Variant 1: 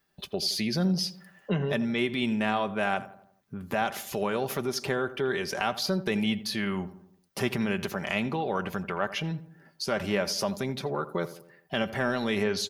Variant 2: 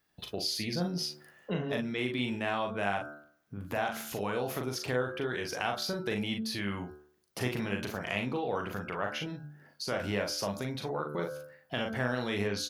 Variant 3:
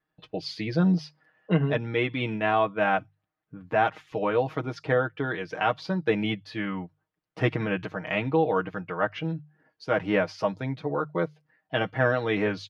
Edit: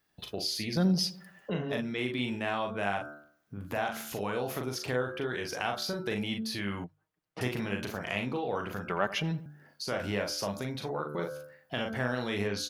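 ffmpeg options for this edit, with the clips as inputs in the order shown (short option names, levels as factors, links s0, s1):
-filter_complex "[0:a]asplit=2[s0][s1];[1:a]asplit=4[s2][s3][s4][s5];[s2]atrim=end=0.772[s6];[s0]atrim=start=0.768:end=1.502[s7];[s3]atrim=start=1.498:end=6.842[s8];[2:a]atrim=start=6.838:end=7.412[s9];[s4]atrim=start=7.408:end=8.902[s10];[s1]atrim=start=8.898:end=9.462[s11];[s5]atrim=start=9.458[s12];[s6][s7]acrossfade=d=0.004:c1=hsin:c2=hsin[s13];[s13][s8]acrossfade=d=0.004:c1=hsin:c2=hsin[s14];[s14][s9]acrossfade=d=0.004:c1=hsin:c2=hsin[s15];[s15][s10]acrossfade=d=0.004:c1=hsin:c2=hsin[s16];[s16][s11]acrossfade=d=0.004:c1=hsin:c2=hsin[s17];[s17][s12]acrossfade=d=0.004:c1=hsin:c2=hsin"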